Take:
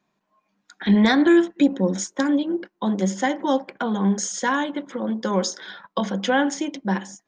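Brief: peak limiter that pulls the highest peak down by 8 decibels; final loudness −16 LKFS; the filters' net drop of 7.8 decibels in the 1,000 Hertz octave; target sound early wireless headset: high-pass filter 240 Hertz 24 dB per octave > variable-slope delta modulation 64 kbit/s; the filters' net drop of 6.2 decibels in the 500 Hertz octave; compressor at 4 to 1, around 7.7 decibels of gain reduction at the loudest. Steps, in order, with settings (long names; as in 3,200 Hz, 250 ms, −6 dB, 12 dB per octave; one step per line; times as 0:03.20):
parametric band 500 Hz −7 dB
parametric band 1,000 Hz −7.5 dB
downward compressor 4 to 1, threshold −24 dBFS
brickwall limiter −23.5 dBFS
high-pass filter 240 Hz 24 dB per octave
variable-slope delta modulation 64 kbit/s
level +18 dB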